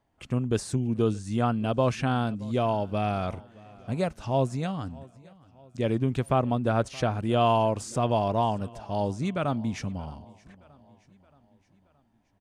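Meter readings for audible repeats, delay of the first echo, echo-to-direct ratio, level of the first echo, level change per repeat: 3, 0.623 s, -21.5 dB, -23.0 dB, -5.5 dB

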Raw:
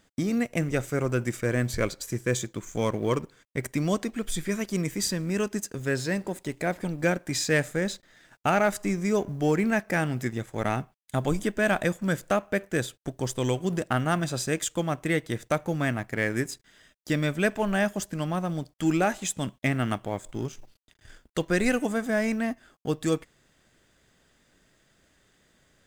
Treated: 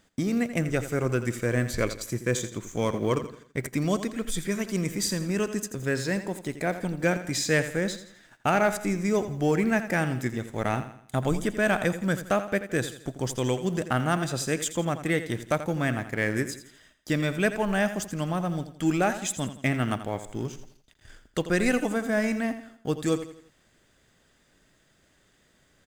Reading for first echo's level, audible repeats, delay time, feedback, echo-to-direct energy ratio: -12.0 dB, 3, 84 ms, 41%, -11.0 dB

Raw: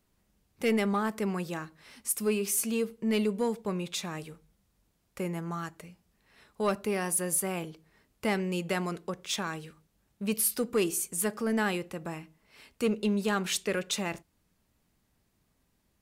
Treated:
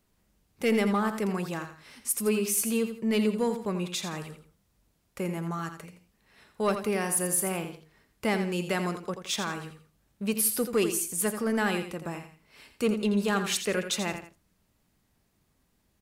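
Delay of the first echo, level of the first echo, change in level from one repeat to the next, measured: 84 ms, -9.0 dB, -10.0 dB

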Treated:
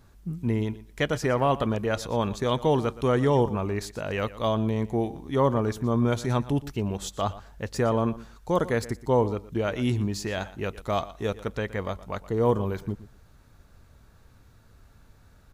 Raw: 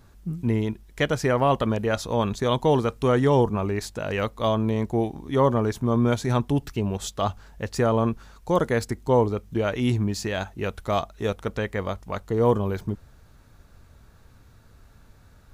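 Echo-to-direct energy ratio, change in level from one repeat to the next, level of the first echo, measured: -17.0 dB, -16.5 dB, -17.0 dB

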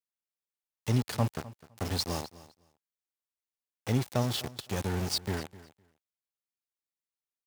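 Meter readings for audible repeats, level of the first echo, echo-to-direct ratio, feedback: 2, -18.5 dB, -18.5 dB, 16%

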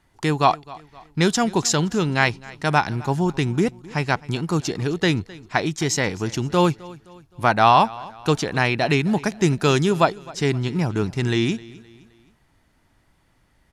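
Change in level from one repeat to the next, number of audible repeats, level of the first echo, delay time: -7.5 dB, 2, -21.0 dB, 0.26 s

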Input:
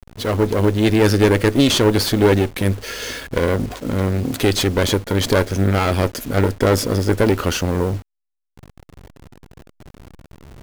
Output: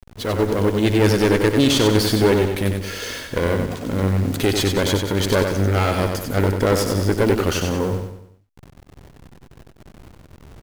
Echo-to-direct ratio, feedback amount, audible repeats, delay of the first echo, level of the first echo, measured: -4.5 dB, 44%, 5, 94 ms, -5.5 dB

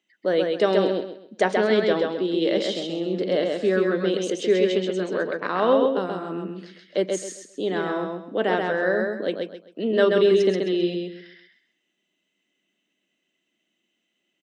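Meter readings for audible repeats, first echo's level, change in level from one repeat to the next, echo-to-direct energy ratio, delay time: 3, -3.5 dB, -11.0 dB, -3.0 dB, 0.131 s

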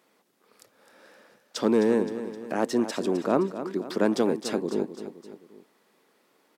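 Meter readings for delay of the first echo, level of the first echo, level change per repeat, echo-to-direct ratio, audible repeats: 0.26 s, -11.5 dB, -6.0 dB, -10.5 dB, 3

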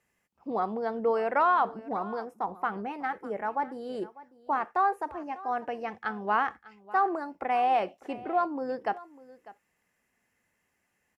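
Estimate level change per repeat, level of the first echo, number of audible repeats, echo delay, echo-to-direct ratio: no steady repeat, -19.0 dB, 1, 0.598 s, -19.0 dB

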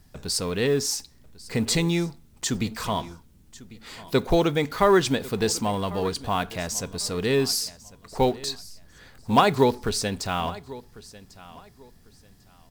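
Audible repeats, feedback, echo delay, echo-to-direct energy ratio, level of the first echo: 2, 24%, 1.097 s, -19.0 dB, -19.0 dB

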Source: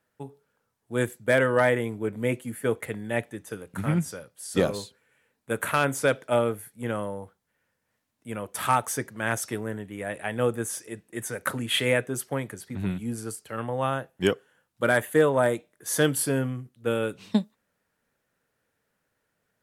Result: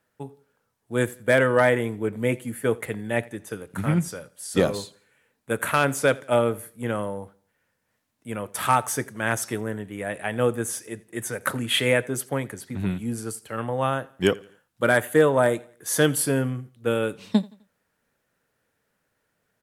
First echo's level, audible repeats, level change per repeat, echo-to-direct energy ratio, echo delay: -23.0 dB, 2, -8.0 dB, -22.5 dB, 85 ms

